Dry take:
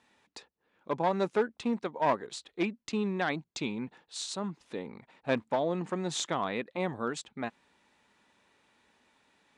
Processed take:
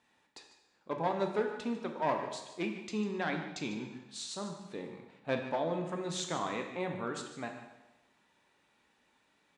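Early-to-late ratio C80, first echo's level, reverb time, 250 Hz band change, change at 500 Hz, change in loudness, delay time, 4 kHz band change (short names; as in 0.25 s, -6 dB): 7.5 dB, -13.5 dB, 1.1 s, -3.5 dB, -3.5 dB, -3.5 dB, 0.149 s, -3.5 dB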